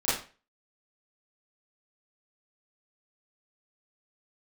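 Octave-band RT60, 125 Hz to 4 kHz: 0.35 s, 0.35 s, 0.35 s, 0.35 s, 0.35 s, 0.30 s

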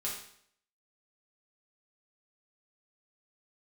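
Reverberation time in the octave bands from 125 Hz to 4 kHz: 0.65 s, 0.65 s, 0.65 s, 0.65 s, 0.60 s, 0.60 s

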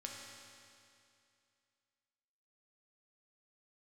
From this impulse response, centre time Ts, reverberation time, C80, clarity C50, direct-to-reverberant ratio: 110 ms, 2.5 s, 2.0 dB, 0.5 dB, -1.5 dB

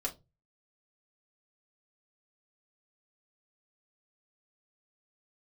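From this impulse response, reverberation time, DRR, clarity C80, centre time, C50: 0.25 s, -2.5 dB, 25.0 dB, 10 ms, 17.5 dB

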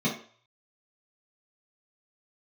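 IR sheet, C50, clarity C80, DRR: 7.0 dB, 12.0 dB, -7.0 dB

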